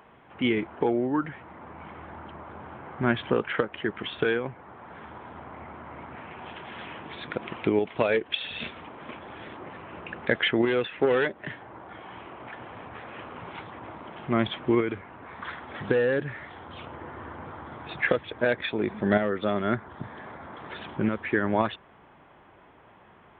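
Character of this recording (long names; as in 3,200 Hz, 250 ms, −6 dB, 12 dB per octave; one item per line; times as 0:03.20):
background noise floor −55 dBFS
spectral slope −4.0 dB per octave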